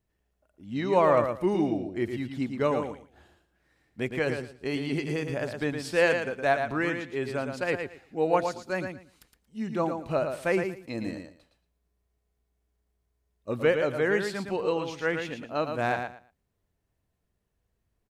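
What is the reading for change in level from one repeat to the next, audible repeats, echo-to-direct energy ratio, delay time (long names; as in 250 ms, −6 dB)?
−14.5 dB, 2, −6.5 dB, 114 ms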